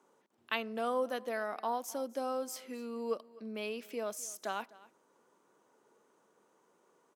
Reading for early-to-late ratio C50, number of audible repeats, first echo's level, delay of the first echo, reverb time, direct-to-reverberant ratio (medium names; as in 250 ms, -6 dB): no reverb, 1, -21.0 dB, 254 ms, no reverb, no reverb